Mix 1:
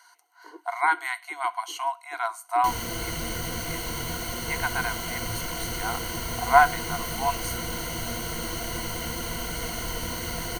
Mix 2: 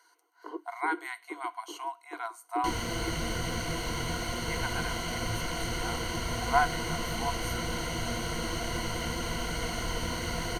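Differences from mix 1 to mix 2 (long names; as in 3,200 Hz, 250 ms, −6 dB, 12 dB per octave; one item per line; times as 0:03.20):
speech −8.5 dB
first sound +7.5 dB
second sound: add high-frequency loss of the air 52 metres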